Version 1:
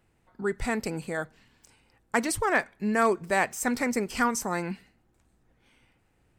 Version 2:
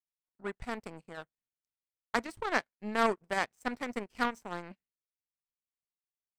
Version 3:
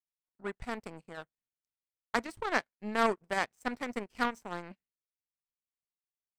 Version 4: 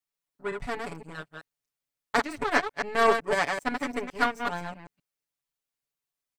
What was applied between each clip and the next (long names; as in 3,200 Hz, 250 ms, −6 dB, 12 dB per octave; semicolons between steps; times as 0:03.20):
high-shelf EQ 4,500 Hz −9.5 dB; power curve on the samples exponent 2
no processing that can be heard
delay that plays each chunk backwards 128 ms, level −4 dB; comb filter 7 ms, depth 89%; level +2.5 dB